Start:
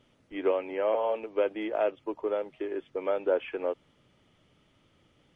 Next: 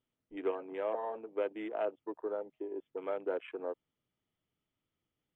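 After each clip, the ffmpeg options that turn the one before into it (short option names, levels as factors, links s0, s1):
-af "bandreject=f=560:w=12,afwtdn=0.00891,volume=0.473"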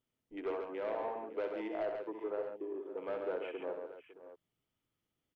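-filter_complex "[0:a]asoftclip=type=tanh:threshold=0.0316,asplit=2[s0][s1];[s1]aecho=0:1:66|138|557|621:0.422|0.531|0.158|0.188[s2];[s0][s2]amix=inputs=2:normalize=0,volume=0.891"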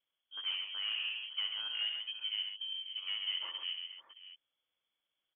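-af "lowpass=f=3000:t=q:w=0.5098,lowpass=f=3000:t=q:w=0.6013,lowpass=f=3000:t=q:w=0.9,lowpass=f=3000:t=q:w=2.563,afreqshift=-3500"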